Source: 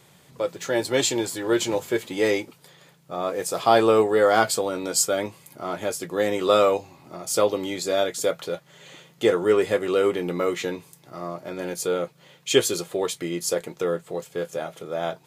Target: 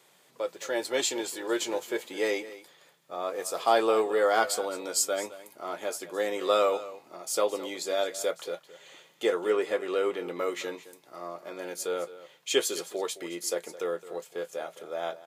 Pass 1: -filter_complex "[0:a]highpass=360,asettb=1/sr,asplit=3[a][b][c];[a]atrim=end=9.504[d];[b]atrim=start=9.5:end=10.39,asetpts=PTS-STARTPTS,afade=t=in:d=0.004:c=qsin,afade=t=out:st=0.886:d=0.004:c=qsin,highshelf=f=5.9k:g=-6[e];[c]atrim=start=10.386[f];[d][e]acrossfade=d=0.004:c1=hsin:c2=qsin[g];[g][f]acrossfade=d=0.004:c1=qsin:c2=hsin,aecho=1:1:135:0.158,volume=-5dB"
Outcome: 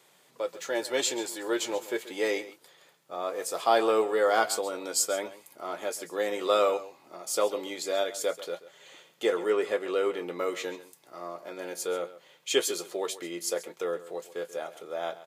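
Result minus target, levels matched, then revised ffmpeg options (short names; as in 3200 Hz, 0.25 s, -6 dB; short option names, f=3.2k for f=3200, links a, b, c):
echo 80 ms early
-filter_complex "[0:a]highpass=360,asettb=1/sr,asplit=3[a][b][c];[a]atrim=end=9.504[d];[b]atrim=start=9.5:end=10.39,asetpts=PTS-STARTPTS,afade=t=in:d=0.004:c=qsin,afade=t=out:st=0.886:d=0.004:c=qsin,highshelf=f=5.9k:g=-6[e];[c]atrim=start=10.386[f];[d][e]acrossfade=d=0.004:c1=hsin:c2=qsin[g];[g][f]acrossfade=d=0.004:c1=qsin:c2=hsin,aecho=1:1:215:0.158,volume=-5dB"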